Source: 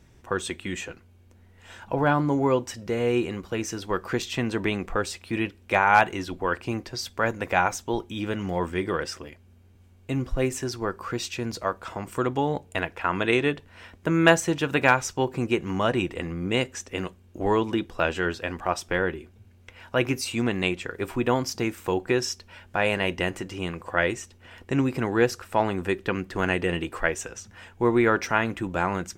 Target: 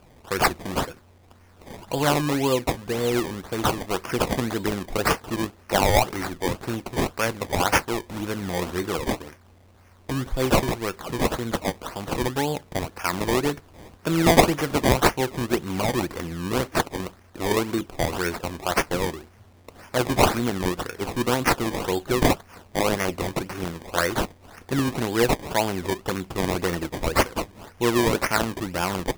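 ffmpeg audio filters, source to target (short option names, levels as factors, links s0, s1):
-af "aexciter=amount=9.8:drive=5.5:freq=6000,acrusher=samples=22:mix=1:aa=0.000001:lfo=1:lforange=22:lforate=1.9"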